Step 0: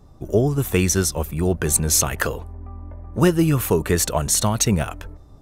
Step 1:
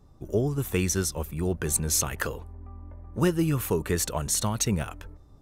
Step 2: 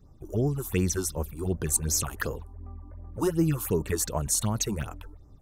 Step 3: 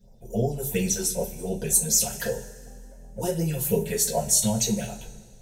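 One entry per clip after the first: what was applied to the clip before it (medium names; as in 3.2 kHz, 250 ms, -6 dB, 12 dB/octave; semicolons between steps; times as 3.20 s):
peaking EQ 670 Hz -4 dB 0.3 oct; trim -7 dB
phase shifter stages 6, 2.7 Hz, lowest notch 130–3700 Hz
static phaser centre 310 Hz, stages 6; two-slope reverb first 0.21 s, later 1.9 s, from -22 dB, DRR -5 dB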